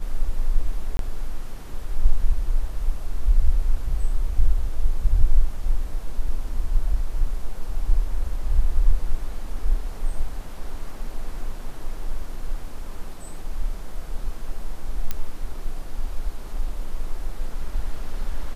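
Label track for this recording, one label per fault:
0.970000	0.990000	gap 22 ms
15.110000	15.110000	pop -10 dBFS

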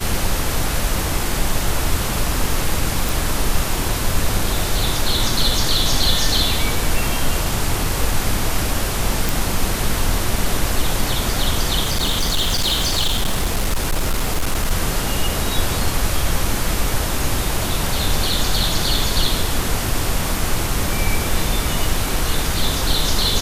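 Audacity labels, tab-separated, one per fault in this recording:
3.090000	3.090000	pop
9.290000	9.290000	pop
11.830000	14.720000	clipped -14 dBFS

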